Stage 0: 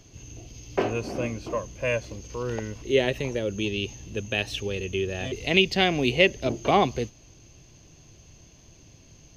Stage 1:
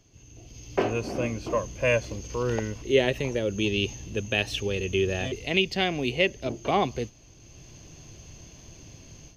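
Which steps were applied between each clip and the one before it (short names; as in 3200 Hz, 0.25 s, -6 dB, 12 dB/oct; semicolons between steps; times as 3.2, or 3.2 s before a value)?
notch 3900 Hz, Q 27; AGC gain up to 13.5 dB; gain -8.5 dB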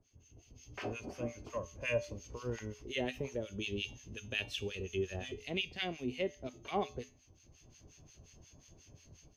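harmonic tremolo 5.6 Hz, depth 100%, crossover 1200 Hz; resonator 84 Hz, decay 0.36 s, harmonics odd, mix 60%; gain -1.5 dB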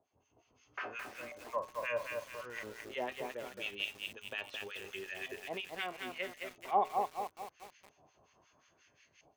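LFO band-pass saw up 0.76 Hz 740–2100 Hz; lo-fi delay 0.217 s, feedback 55%, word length 10-bit, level -3.5 dB; gain +9.5 dB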